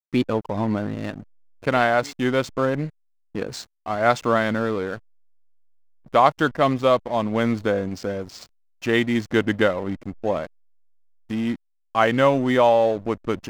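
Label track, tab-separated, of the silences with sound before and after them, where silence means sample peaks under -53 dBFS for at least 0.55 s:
4.990000	6.050000	silence
10.470000	11.300000	silence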